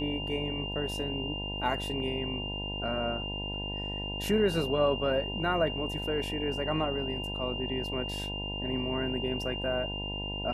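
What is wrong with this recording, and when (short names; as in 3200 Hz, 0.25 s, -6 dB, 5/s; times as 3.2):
buzz 50 Hz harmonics 20 -38 dBFS
tone 2800 Hz -36 dBFS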